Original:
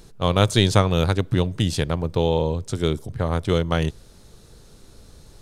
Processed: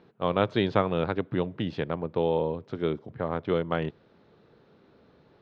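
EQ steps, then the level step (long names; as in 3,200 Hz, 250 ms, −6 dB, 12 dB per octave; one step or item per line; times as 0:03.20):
band-pass filter 200–3,000 Hz
high-frequency loss of the air 240 metres
−3.0 dB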